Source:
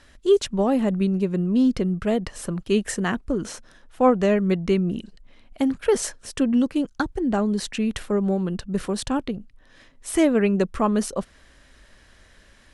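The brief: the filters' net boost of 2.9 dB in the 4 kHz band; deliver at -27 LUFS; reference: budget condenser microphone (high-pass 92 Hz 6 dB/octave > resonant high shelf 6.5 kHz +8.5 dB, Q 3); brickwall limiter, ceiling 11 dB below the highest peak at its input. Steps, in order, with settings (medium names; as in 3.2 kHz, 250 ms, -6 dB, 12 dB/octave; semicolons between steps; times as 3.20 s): peaking EQ 4 kHz +8 dB; peak limiter -17 dBFS; high-pass 92 Hz 6 dB/octave; resonant high shelf 6.5 kHz +8.5 dB, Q 3; trim -2 dB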